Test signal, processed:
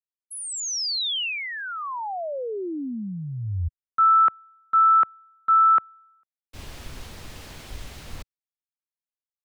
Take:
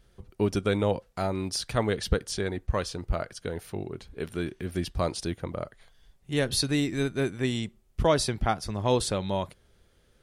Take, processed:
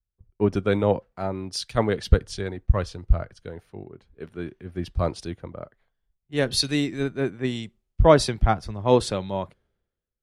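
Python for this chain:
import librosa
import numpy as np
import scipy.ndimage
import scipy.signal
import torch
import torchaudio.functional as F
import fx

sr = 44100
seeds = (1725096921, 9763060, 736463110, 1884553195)

y = fx.lowpass(x, sr, hz=2900.0, slope=6)
y = fx.band_widen(y, sr, depth_pct=100)
y = F.gain(torch.from_numpy(y), 2.0).numpy()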